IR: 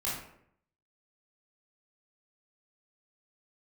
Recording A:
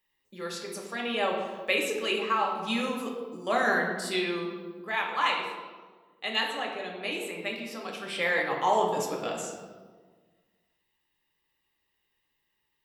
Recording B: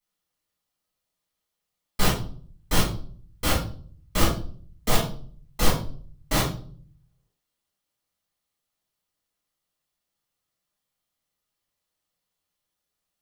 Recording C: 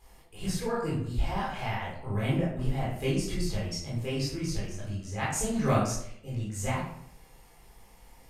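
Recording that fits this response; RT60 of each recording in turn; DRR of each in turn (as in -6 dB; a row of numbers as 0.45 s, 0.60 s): C; 1.5 s, 0.45 s, 0.70 s; -1.0 dB, -8.0 dB, -8.0 dB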